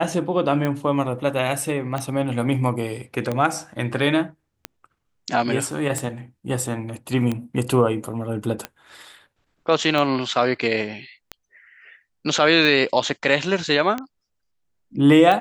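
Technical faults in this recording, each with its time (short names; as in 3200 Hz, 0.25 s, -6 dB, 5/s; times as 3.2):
tick 45 rpm -12 dBFS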